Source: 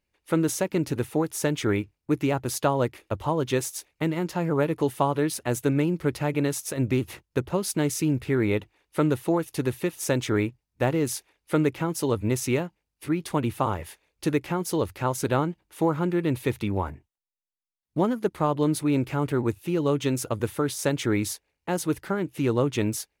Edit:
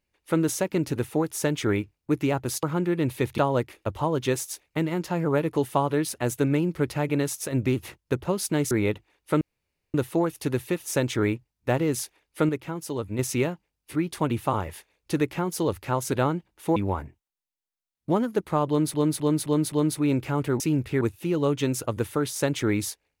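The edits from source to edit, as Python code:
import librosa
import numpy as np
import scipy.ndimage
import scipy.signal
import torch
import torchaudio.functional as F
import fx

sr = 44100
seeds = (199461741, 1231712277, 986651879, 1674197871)

y = fx.edit(x, sr, fx.move(start_s=7.96, length_s=0.41, to_s=19.44),
    fx.insert_room_tone(at_s=9.07, length_s=0.53),
    fx.clip_gain(start_s=11.62, length_s=0.7, db=-5.5),
    fx.move(start_s=15.89, length_s=0.75, to_s=2.63),
    fx.repeat(start_s=18.56, length_s=0.26, count=5), tone=tone)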